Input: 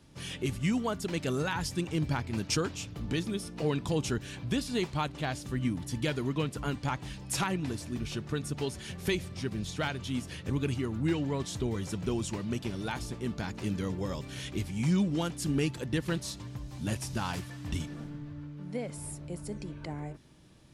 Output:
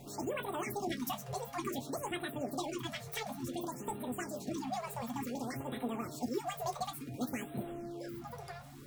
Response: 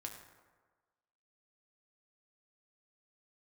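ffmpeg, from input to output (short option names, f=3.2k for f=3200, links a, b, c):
-filter_complex "[0:a]aeval=exprs='val(0)+0.5*0.00668*sgn(val(0))':c=same,lowshelf=f=77:g=6,aeval=exprs='val(0)+0.00708*(sin(2*PI*60*n/s)+sin(2*PI*2*60*n/s)/2+sin(2*PI*3*60*n/s)/3+sin(2*PI*4*60*n/s)/4+sin(2*PI*5*60*n/s)/5)':c=same[a];[1:a]atrim=start_sample=2205,afade=t=out:st=0.13:d=0.01,atrim=end_sample=6174[b];[a][b]afir=irnorm=-1:irlink=0,asetrate=103194,aresample=44100,afftfilt=real='re*(1-between(b*sr/1024,270*pow(5900/270,0.5+0.5*sin(2*PI*0.56*pts/sr))/1.41,270*pow(5900/270,0.5+0.5*sin(2*PI*0.56*pts/sr))*1.41))':imag='im*(1-between(b*sr/1024,270*pow(5900/270,0.5+0.5*sin(2*PI*0.56*pts/sr))/1.41,270*pow(5900/270,0.5+0.5*sin(2*PI*0.56*pts/sr))*1.41))':win_size=1024:overlap=0.75,volume=-4dB"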